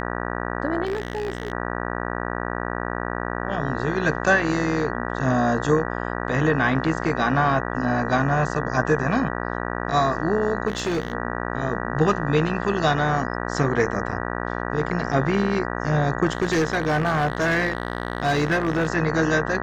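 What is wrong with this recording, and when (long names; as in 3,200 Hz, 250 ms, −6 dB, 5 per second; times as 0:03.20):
mains buzz 60 Hz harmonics 32 −28 dBFS
0:00.85–0:01.52: clipping −21.5 dBFS
0:10.67–0:11.13: clipping −20 dBFS
0:16.32–0:18.88: clipping −16.5 dBFS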